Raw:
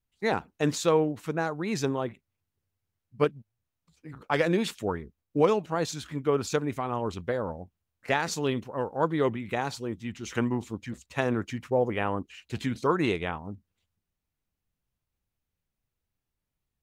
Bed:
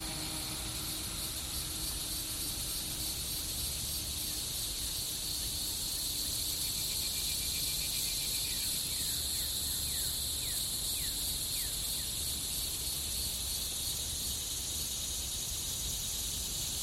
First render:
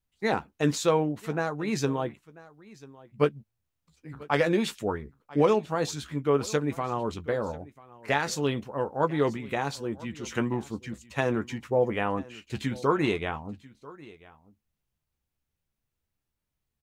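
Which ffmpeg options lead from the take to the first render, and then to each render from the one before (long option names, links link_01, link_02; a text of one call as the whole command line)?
ffmpeg -i in.wav -filter_complex "[0:a]asplit=2[link_01][link_02];[link_02]adelay=14,volume=-9.5dB[link_03];[link_01][link_03]amix=inputs=2:normalize=0,aecho=1:1:991:0.0891" out.wav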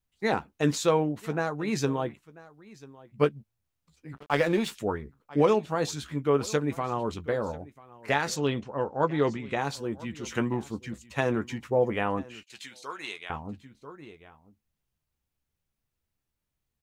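ffmpeg -i in.wav -filter_complex "[0:a]asplit=3[link_01][link_02][link_03];[link_01]afade=type=out:start_time=4.15:duration=0.02[link_04];[link_02]aeval=exprs='sgn(val(0))*max(abs(val(0))-0.0075,0)':channel_layout=same,afade=type=in:start_time=4.15:duration=0.02,afade=type=out:start_time=4.7:duration=0.02[link_05];[link_03]afade=type=in:start_time=4.7:duration=0.02[link_06];[link_04][link_05][link_06]amix=inputs=3:normalize=0,asettb=1/sr,asplit=3[link_07][link_08][link_09];[link_07]atrim=end=8.364[link_10];[link_08]atrim=start=8.36:end=9.58,asetpts=PTS-STARTPTS,afade=type=in:duration=0.004:curve=qsin,afade=type=out:start_time=1.216:duration=0.004:curve=qsin,lowpass=frequency=7600:width=0.5412,lowpass=frequency=7600:width=1.3066[link_11];[link_09]atrim=start=9.576[link_12];[link_10][link_11]acrossfade=duration=0.004:curve1=hsin:curve2=qsin[link_13];[link_13][link_12]acrossfade=duration=0.004:curve1=qsin:curve2=hsin,asettb=1/sr,asplit=3[link_14][link_15][link_16];[link_14]atrim=end=12.434[link_17];[link_15]atrim=start=12.43:end=13.3,asetpts=PTS-STARTPTS,afade=type=in:duration=0.004:curve=qsin,afade=type=out:start_time=0.866:duration=0.004:curve=qsin,bandpass=frequency=6800:width_type=q:width=0.51[link_18];[link_16]atrim=start=13.296[link_19];[link_17][link_18]acrossfade=duration=0.004:curve1=hsin:curve2=qsin[link_20];[link_20][link_19]acrossfade=duration=0.004:curve1=qsin:curve2=hsin" out.wav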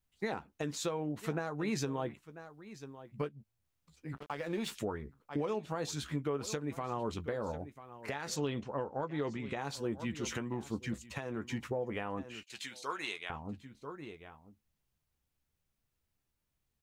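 ffmpeg -i in.wav -af "acompressor=threshold=-28dB:ratio=6,alimiter=level_in=0.5dB:limit=-24dB:level=0:latency=1:release=473,volume=-0.5dB" out.wav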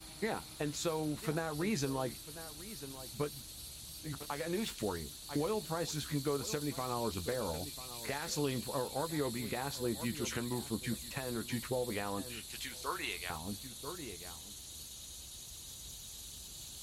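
ffmpeg -i in.wav -i bed.wav -filter_complex "[1:a]volume=-12dB[link_01];[0:a][link_01]amix=inputs=2:normalize=0" out.wav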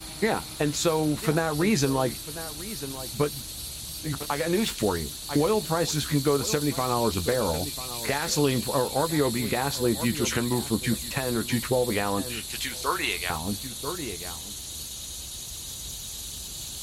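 ffmpeg -i in.wav -af "volume=11.5dB" out.wav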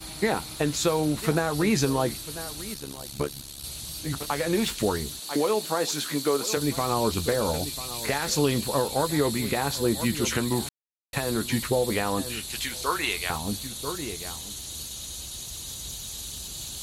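ffmpeg -i in.wav -filter_complex "[0:a]asettb=1/sr,asplit=3[link_01][link_02][link_03];[link_01]atrim=end=2.744[link_04];[link_02]atrim=start=2.74:end=3.64,asetpts=PTS-STARTPTS,afade=type=in:duration=0.004:curve=qsin,afade=type=out:start_time=0.896:duration=0.004:curve=qsin,tremolo=f=70:d=0.857[link_05];[link_03]atrim=start=3.636[link_06];[link_04][link_05]acrossfade=duration=0.004:curve1=hsin:curve2=qsin[link_07];[link_07][link_06]acrossfade=duration=0.004:curve1=qsin:curve2=hsin,asettb=1/sr,asplit=3[link_08][link_09][link_10];[link_08]atrim=end=5.194[link_11];[link_09]atrim=start=5.19:end=6.57,asetpts=PTS-STARTPTS,afade=type=in:duration=0.004:curve=qsin,afade=type=out:start_time=1.376:duration=0.004:curve=qsin,highpass=270[link_12];[link_10]atrim=start=6.566[link_13];[link_11][link_12]acrossfade=duration=0.004:curve1=hsin:curve2=qsin[link_14];[link_14][link_13]acrossfade=duration=0.004:curve1=qsin:curve2=hsin,asplit=3[link_15][link_16][link_17];[link_15]atrim=end=10.69,asetpts=PTS-STARTPTS,afade=type=out:start_time=10.686:duration=0.004:curve=hsin[link_18];[link_16]atrim=start=10.69:end=11.13,asetpts=PTS-STARTPTS,volume=0[link_19];[link_17]atrim=start=11.13,asetpts=PTS-STARTPTS,afade=type=in:duration=0.004:curve=hsin[link_20];[link_18][link_19][link_20]concat=n=3:v=0:a=1" out.wav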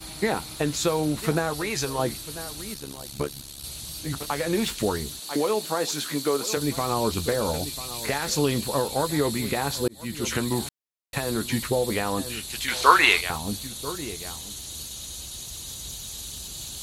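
ffmpeg -i in.wav -filter_complex "[0:a]asettb=1/sr,asplit=3[link_01][link_02][link_03];[link_01]atrim=end=1.534[link_04];[link_02]atrim=start=1.53:end=1.99,asetpts=PTS-STARTPTS,afade=type=in:duration=0.004:curve=qsin,afade=type=out:start_time=0.456:duration=0.004:curve=qsin,equalizer=frequency=210:width_type=o:width=1.3:gain=-13.5[link_05];[link_03]atrim=start=1.986[link_06];[link_04][link_05]acrossfade=duration=0.004:curve1=hsin:curve2=qsin[link_07];[link_07][link_06]acrossfade=duration=0.004:curve1=qsin:curve2=hsin,asettb=1/sr,asplit=3[link_08][link_09][link_10];[link_08]atrim=end=12.684[link_11];[link_09]atrim=start=12.68:end=13.21,asetpts=PTS-STARTPTS,afade=type=in:duration=0.004:curve=qsin,afade=type=out:start_time=0.526:duration=0.004:curve=qsin,equalizer=frequency=1400:width=0.35:gain=13[link_12];[link_10]atrim=start=13.206[link_13];[link_11][link_12]acrossfade=duration=0.004:curve1=hsin:curve2=qsin[link_14];[link_14][link_13]acrossfade=duration=0.004:curve1=qsin:curve2=hsin,asplit=2[link_15][link_16];[link_15]atrim=end=9.88,asetpts=PTS-STARTPTS,afade=type=out:start_time=9.876:duration=0.004:curve=hsin[link_17];[link_16]atrim=start=9.88,asetpts=PTS-STARTPTS,afade=type=in:duration=0.48[link_18];[link_17][link_18]concat=n=2:v=0:a=1" out.wav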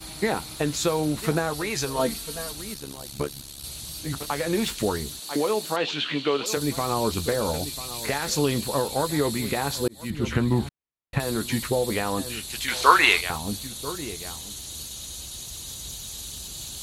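ffmpeg -i in.wav -filter_complex "[0:a]asettb=1/sr,asplit=3[link_01][link_02][link_03];[link_01]atrim=end=1.964[link_04];[link_02]atrim=start=1.96:end=2.52,asetpts=PTS-STARTPTS,afade=type=in:duration=0.004:curve=qsin,afade=type=out:start_time=0.556:duration=0.004:curve=qsin,aecho=1:1:4.4:0.77,atrim=end_sample=24696[link_05];[link_03]atrim=start=2.516[link_06];[link_04][link_05]acrossfade=duration=0.004:curve1=hsin:curve2=qsin[link_07];[link_07][link_06]acrossfade=duration=0.004:curve1=qsin:curve2=hsin,asettb=1/sr,asplit=3[link_08][link_09][link_10];[link_08]atrim=end=5.764[link_11];[link_09]atrim=start=5.76:end=6.46,asetpts=PTS-STARTPTS,afade=type=in:duration=0.004:curve=qsin,afade=type=out:start_time=0.696:duration=0.004:curve=qsin,lowpass=frequency=2900:width_type=q:width=4.9[link_12];[link_10]atrim=start=6.456[link_13];[link_11][link_12]acrossfade=duration=0.004:curve1=hsin:curve2=qsin[link_14];[link_14][link_13]acrossfade=duration=0.004:curve1=qsin:curve2=hsin,asettb=1/sr,asplit=3[link_15][link_16][link_17];[link_15]atrim=end=10.104[link_18];[link_16]atrim=start=10.1:end=11.2,asetpts=PTS-STARTPTS,afade=type=in:duration=0.004:curve=qsin,afade=type=out:start_time=1.096:duration=0.004:curve=qsin,bass=frequency=250:gain=8,treble=frequency=4000:gain=-14[link_19];[link_17]atrim=start=11.196[link_20];[link_18][link_19]acrossfade=duration=0.004:curve1=hsin:curve2=qsin[link_21];[link_21][link_20]acrossfade=duration=0.004:curve1=qsin:curve2=hsin" out.wav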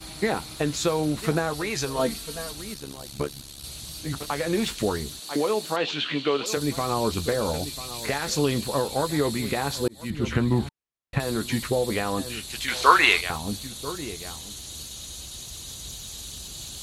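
ffmpeg -i in.wav -af "highshelf=frequency=12000:gain=-8.5,bandreject=frequency=900:width=25" out.wav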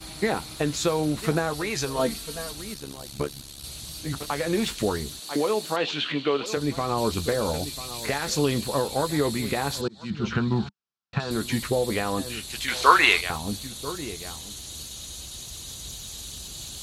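ffmpeg -i in.wav -filter_complex "[0:a]asettb=1/sr,asplit=3[link_01][link_02][link_03];[link_01]atrim=end=6.124[link_04];[link_02]atrim=start=6.12:end=6.98,asetpts=PTS-STARTPTS,afade=type=in:duration=0.004:curve=qsin,afade=type=out:start_time=0.856:duration=0.004:curve=qsin,lowpass=frequency=4000:poles=1[link_05];[link_03]atrim=start=6.976[link_06];[link_04][link_05]acrossfade=duration=0.004:curve1=hsin:curve2=qsin[link_07];[link_07][link_06]acrossfade=duration=0.004:curve1=qsin:curve2=hsin,asettb=1/sr,asplit=3[link_08][link_09][link_10];[link_08]atrim=end=9.814[link_11];[link_09]atrim=start=9.81:end=11.31,asetpts=PTS-STARTPTS,afade=type=in:duration=0.004:curve=qsin,afade=type=out:start_time=1.496:duration=0.004:curve=qsin,highpass=110,equalizer=frequency=200:width_type=q:width=4:gain=5,equalizer=frequency=290:width_type=q:width=4:gain=-9,equalizer=frequency=550:width_type=q:width=4:gain=-8,equalizer=frequency=1400:width_type=q:width=4:gain=6,equalizer=frequency=2000:width_type=q:width=4:gain=-8,equalizer=frequency=5300:width_type=q:width=4:gain=3,lowpass=frequency=5900:width=0.5412,lowpass=frequency=5900:width=1.3066[link_12];[link_10]atrim=start=11.306[link_13];[link_11][link_12]acrossfade=duration=0.004:curve1=hsin:curve2=qsin[link_14];[link_14][link_13]acrossfade=duration=0.004:curve1=qsin:curve2=hsin" out.wav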